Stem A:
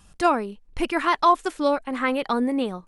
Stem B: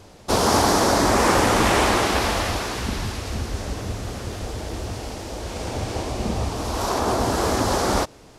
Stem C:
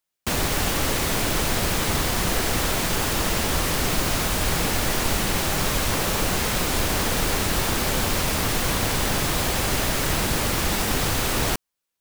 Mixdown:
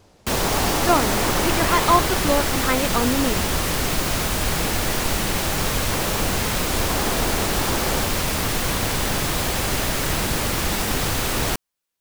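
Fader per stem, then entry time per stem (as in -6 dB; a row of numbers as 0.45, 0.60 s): +0.5, -7.0, +0.5 dB; 0.65, 0.00, 0.00 s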